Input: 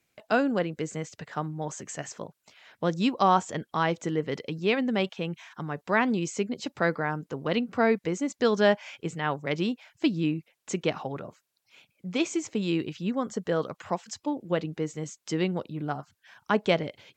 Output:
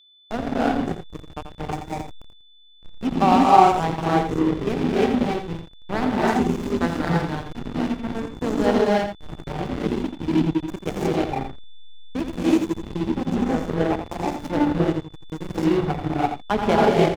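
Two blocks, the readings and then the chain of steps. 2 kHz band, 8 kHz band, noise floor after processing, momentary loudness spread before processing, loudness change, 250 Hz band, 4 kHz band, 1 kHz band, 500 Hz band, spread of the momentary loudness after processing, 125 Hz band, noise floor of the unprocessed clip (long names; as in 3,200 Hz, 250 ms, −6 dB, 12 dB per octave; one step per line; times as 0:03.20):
+0.5 dB, −2.5 dB, −49 dBFS, 12 LU, +6.5 dB, +7.0 dB, +1.5 dB, +9.0 dB, +4.5 dB, 15 LU, +6.5 dB, −79 dBFS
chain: gain on a spectral selection 0:06.52–0:08.18, 330–800 Hz −6 dB
thirty-one-band graphic EQ 250 Hz +7 dB, 400 Hz +5 dB, 800 Hz +11 dB
sample-and-hold tremolo 1.7 Hz, depth 75%
in parallel at +2 dB: downward compressor 8 to 1, threshold −38 dBFS, peak gain reduction 22.5 dB
on the sum: mains-hum notches 60/120/180/240/300/360/420/480/540 Hz
reverb whose tail is shaped and stops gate 360 ms rising, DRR −6 dB
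slack as between gear wheels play −15 dBFS
on a send: single-tap delay 85 ms −8.5 dB
on the sum: steady tone 3,500 Hz −52 dBFS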